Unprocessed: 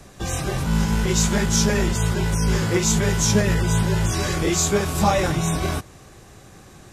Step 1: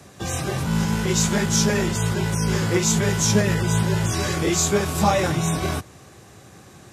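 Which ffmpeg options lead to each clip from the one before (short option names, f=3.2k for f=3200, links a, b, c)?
-af "highpass=f=73:w=0.5412,highpass=f=73:w=1.3066"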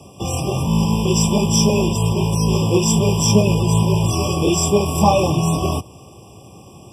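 -af "afftfilt=real='re*eq(mod(floor(b*sr/1024/1200),2),0)':imag='im*eq(mod(floor(b*sr/1024/1200),2),0)':win_size=1024:overlap=0.75,volume=5dB"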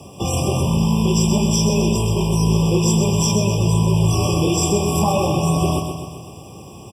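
-af "acompressor=threshold=-19dB:ratio=4,acrusher=bits=10:mix=0:aa=0.000001,aecho=1:1:128|256|384|512|640|768|896:0.473|0.27|0.154|0.0876|0.0499|0.0285|0.0162,volume=2.5dB"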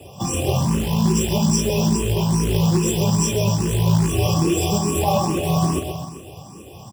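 -filter_complex "[0:a]acrusher=bits=4:mode=log:mix=0:aa=0.000001,asplit=2[a][b];[b]afreqshift=2.4[c];[a][c]amix=inputs=2:normalize=1,volume=1.5dB"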